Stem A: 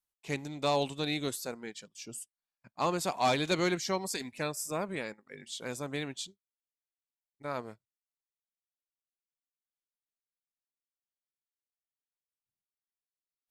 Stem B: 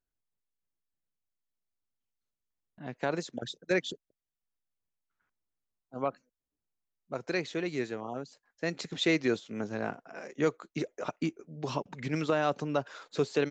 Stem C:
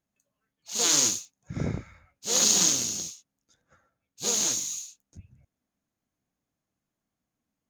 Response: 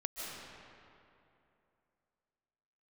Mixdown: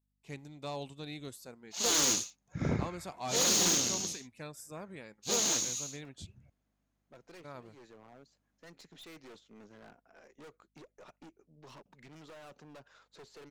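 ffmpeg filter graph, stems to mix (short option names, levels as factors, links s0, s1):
-filter_complex "[0:a]equalizer=f=69:t=o:w=2.6:g=14,aeval=exprs='val(0)+0.000562*(sin(2*PI*50*n/s)+sin(2*PI*2*50*n/s)/2+sin(2*PI*3*50*n/s)/3+sin(2*PI*4*50*n/s)/4+sin(2*PI*5*50*n/s)/5)':c=same,volume=0.251,asplit=2[s0][s1];[1:a]aeval=exprs='0.188*(cos(1*acos(clip(val(0)/0.188,-1,1)))-cos(1*PI/2))+0.0376*(cos(6*acos(clip(val(0)/0.188,-1,1)))-cos(6*PI/2))':c=same,asoftclip=type=hard:threshold=0.0266,volume=0.188[s2];[2:a]lowpass=f=3600:p=1,adelay=1050,volume=1.26[s3];[s1]apad=whole_len=595392[s4];[s2][s4]sidechaincompress=threshold=0.00355:ratio=8:attack=6.9:release=339[s5];[s0][s5][s3]amix=inputs=3:normalize=0,lowshelf=f=200:g=-5,asoftclip=type=hard:threshold=0.0668"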